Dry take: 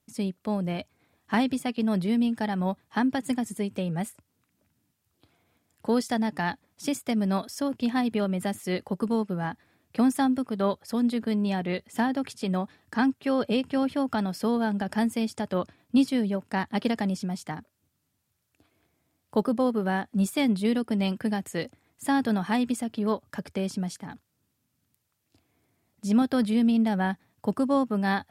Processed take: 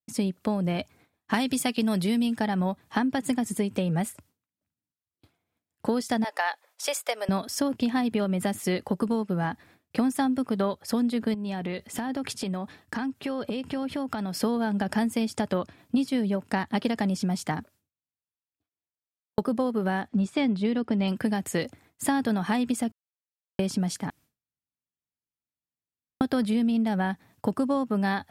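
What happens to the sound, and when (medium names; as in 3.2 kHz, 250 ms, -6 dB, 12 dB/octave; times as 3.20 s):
1.34–2.36 s: treble shelf 2.9 kHz +10.5 dB
6.24–7.29 s: Chebyshev high-pass 500 Hz, order 4
11.34–14.39 s: compression 10:1, threshold -34 dBFS
17.57–19.38 s: fade out
20.08–21.08 s: distance through air 110 m
22.92–23.59 s: mute
24.10–26.21 s: room tone
whole clip: expander -55 dBFS; compression, threshold -30 dBFS; trim +7.5 dB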